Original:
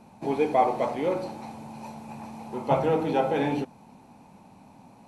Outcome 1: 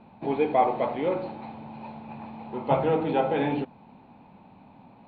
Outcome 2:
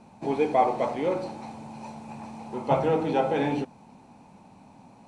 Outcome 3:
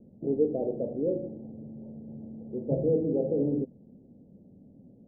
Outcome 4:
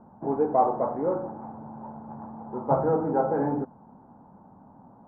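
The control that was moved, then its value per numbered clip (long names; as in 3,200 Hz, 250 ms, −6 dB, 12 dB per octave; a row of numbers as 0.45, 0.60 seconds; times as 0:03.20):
Butterworth low-pass, frequency: 3,900, 9,900, 540, 1,500 Hertz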